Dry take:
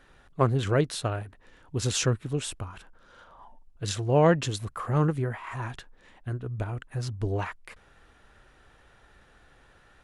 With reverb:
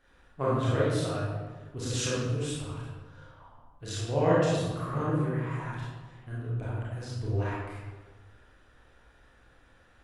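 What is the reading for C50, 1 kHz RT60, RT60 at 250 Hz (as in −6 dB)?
−2.5 dB, 1.2 s, 1.6 s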